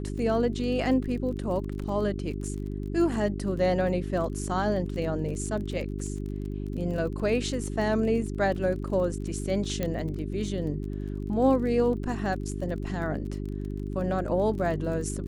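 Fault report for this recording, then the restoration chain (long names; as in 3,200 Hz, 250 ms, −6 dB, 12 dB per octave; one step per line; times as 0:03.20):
surface crackle 29 per second −36 dBFS
mains hum 50 Hz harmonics 8 −33 dBFS
0:09.83: click −15 dBFS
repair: click removal
hum removal 50 Hz, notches 8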